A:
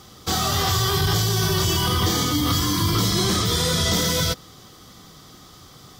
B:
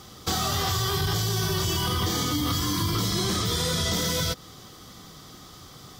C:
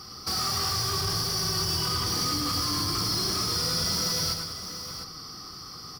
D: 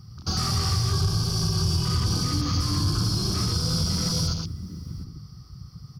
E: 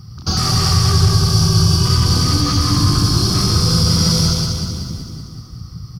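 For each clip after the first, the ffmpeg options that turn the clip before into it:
ffmpeg -i in.wav -af "acompressor=threshold=-24dB:ratio=3" out.wav
ffmpeg -i in.wav -filter_complex "[0:a]superequalizer=8b=0.631:10b=2:13b=0.562:14b=3.98:15b=0.398,asoftclip=type=tanh:threshold=-24dB,asplit=2[link_01][link_02];[link_02]aecho=0:1:105|197|705:0.473|0.237|0.316[link_03];[link_01][link_03]amix=inputs=2:normalize=0,volume=-2dB" out.wav
ffmpeg -i in.wav -af "afwtdn=0.0158,bass=frequency=250:gain=14,treble=frequency=4000:gain=1,alimiter=limit=-15dB:level=0:latency=1:release=300" out.wav
ffmpeg -i in.wav -af "aecho=1:1:189|378|567|756|945|1134|1323|1512:0.596|0.334|0.187|0.105|0.0586|0.0328|0.0184|0.0103,volume=8.5dB" out.wav

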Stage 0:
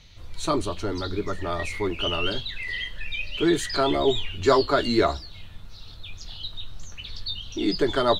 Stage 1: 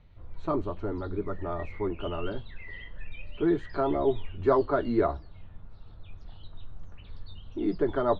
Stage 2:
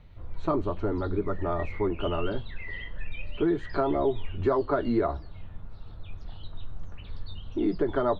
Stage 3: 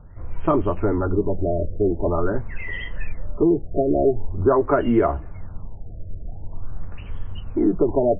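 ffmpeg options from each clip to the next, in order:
ffmpeg -i in.wav -af "lowpass=1200,volume=-3.5dB" out.wav
ffmpeg -i in.wav -af "acompressor=threshold=-27dB:ratio=4,volume=5dB" out.wav
ffmpeg -i in.wav -af "afftfilt=real='re*lt(b*sr/1024,680*pow(3400/680,0.5+0.5*sin(2*PI*0.45*pts/sr)))':imag='im*lt(b*sr/1024,680*pow(3400/680,0.5+0.5*sin(2*PI*0.45*pts/sr)))':win_size=1024:overlap=0.75,volume=7.5dB" out.wav

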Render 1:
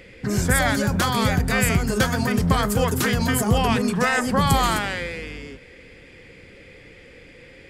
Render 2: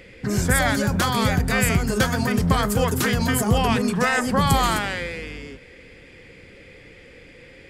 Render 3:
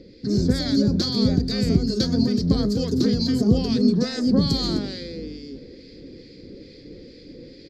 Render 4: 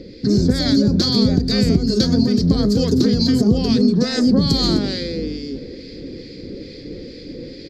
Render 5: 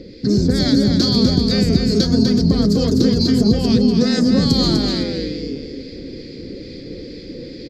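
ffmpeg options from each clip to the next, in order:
ffmpeg -i in.wav -af anull out.wav
ffmpeg -i in.wav -filter_complex "[0:a]firequalizer=gain_entry='entry(100,0);entry(280,11);entry(850,-15);entry(2900,-13);entry(4300,12);entry(8700,-19)':delay=0.05:min_phase=1,areverse,acompressor=mode=upward:threshold=-31dB:ratio=2.5,areverse,acrossover=split=1400[link_01][link_02];[link_01]aeval=exprs='val(0)*(1-0.5/2+0.5/2*cos(2*PI*2.3*n/s))':channel_layout=same[link_03];[link_02]aeval=exprs='val(0)*(1-0.5/2-0.5/2*cos(2*PI*2.3*n/s))':channel_layout=same[link_04];[link_03][link_04]amix=inputs=2:normalize=0,volume=-1.5dB" out.wav
ffmpeg -i in.wav -af "acompressor=threshold=-22dB:ratio=3,volume=9dB" out.wav
ffmpeg -i in.wav -af "aecho=1:1:248:0.531" out.wav

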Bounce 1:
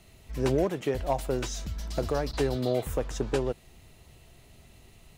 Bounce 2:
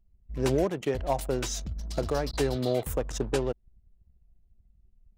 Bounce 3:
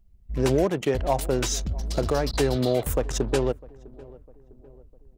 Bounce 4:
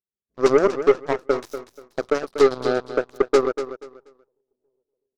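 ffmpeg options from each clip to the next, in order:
ffmpeg -i in.wav -af "anlmdn=0.398,highshelf=frequency=5000:gain=6.5" out.wav
ffmpeg -i in.wav -filter_complex "[0:a]asplit=2[link_01][link_02];[link_02]alimiter=limit=-22.5dB:level=0:latency=1:release=90,volume=1dB[link_03];[link_01][link_03]amix=inputs=2:normalize=0,asplit=2[link_04][link_05];[link_05]adelay=653,lowpass=frequency=940:poles=1,volume=-21dB,asplit=2[link_06][link_07];[link_07]adelay=653,lowpass=frequency=940:poles=1,volume=0.53,asplit=2[link_08][link_09];[link_09]adelay=653,lowpass=frequency=940:poles=1,volume=0.53,asplit=2[link_10][link_11];[link_11]adelay=653,lowpass=frequency=940:poles=1,volume=0.53[link_12];[link_04][link_06][link_08][link_10][link_12]amix=inputs=5:normalize=0" out.wav
ffmpeg -i in.wav -af "highpass=320,equalizer=frequency=410:width_type=q:width=4:gain=9,equalizer=frequency=820:width_type=q:width=4:gain=-7,equalizer=frequency=2100:width_type=q:width=4:gain=-9,equalizer=frequency=3000:width_type=q:width=4:gain=-9,lowpass=frequency=6200:width=0.5412,lowpass=frequency=6200:width=1.3066,aeval=exprs='0.422*(cos(1*acos(clip(val(0)/0.422,-1,1)))-cos(1*PI/2))+0.0473*(cos(3*acos(clip(val(0)/0.422,-1,1)))-cos(3*PI/2))+0.015*(cos(4*acos(clip(val(0)/0.422,-1,1)))-cos(4*PI/2))+0.0422*(cos(7*acos(clip(val(0)/0.422,-1,1)))-cos(7*PI/2))':channel_layout=same,aecho=1:1:241|482|723:0.282|0.0676|0.0162,volume=4.5dB" out.wav

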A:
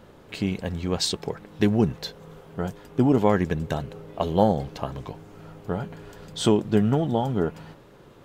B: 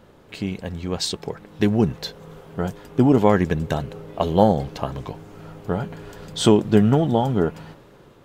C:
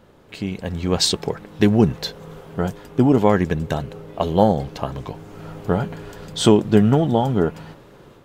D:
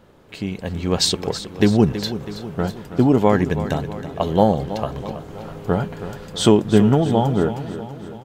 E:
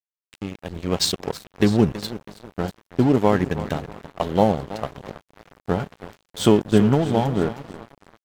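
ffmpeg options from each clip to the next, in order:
ffmpeg -i in.wav -af "dynaudnorm=framelen=670:gausssize=5:maxgain=11.5dB,volume=-1dB" out.wav
ffmpeg -i in.wav -af "dynaudnorm=framelen=510:gausssize=3:maxgain=11.5dB,volume=-1dB" out.wav
ffmpeg -i in.wav -af "aecho=1:1:325|650|975|1300|1625|1950:0.237|0.133|0.0744|0.0416|0.0233|0.0131" out.wav
ffmpeg -i in.wav -af "aeval=exprs='sgn(val(0))*max(abs(val(0))-0.0376,0)':channel_layout=same,volume=-1dB" out.wav

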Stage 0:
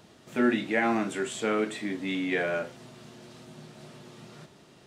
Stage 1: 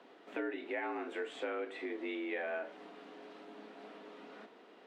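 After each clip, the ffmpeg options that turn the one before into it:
ffmpeg -i in.wav -filter_complex "[0:a]acompressor=threshold=-34dB:ratio=5,acrossover=split=200 3200:gain=0.0631 1 0.0794[link_01][link_02][link_03];[link_01][link_02][link_03]amix=inputs=3:normalize=0,afreqshift=59,volume=-1dB" out.wav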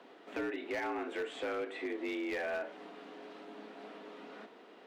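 ffmpeg -i in.wav -af "volume=34dB,asoftclip=hard,volume=-34dB,volume=2.5dB" out.wav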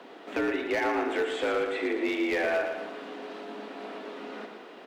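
ffmpeg -i in.wav -af "aecho=1:1:115|230|345|460|575|690:0.447|0.219|0.107|0.0526|0.0258|0.0126,volume=8.5dB" out.wav

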